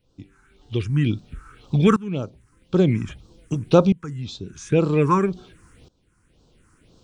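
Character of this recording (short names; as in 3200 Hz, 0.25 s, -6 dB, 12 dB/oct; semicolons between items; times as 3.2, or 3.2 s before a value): tremolo saw up 0.51 Hz, depth 90%; phasing stages 4, 1.9 Hz, lowest notch 570–2000 Hz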